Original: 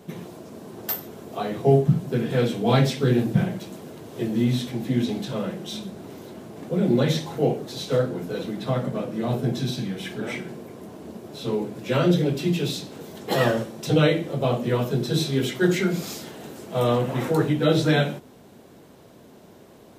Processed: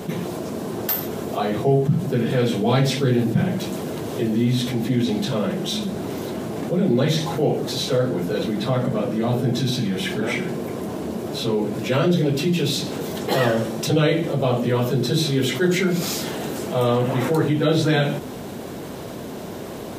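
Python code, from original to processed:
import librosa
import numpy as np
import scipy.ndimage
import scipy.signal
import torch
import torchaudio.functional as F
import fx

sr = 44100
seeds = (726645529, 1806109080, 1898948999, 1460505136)

y = fx.env_flatten(x, sr, amount_pct=50)
y = y * librosa.db_to_amplitude(-1.5)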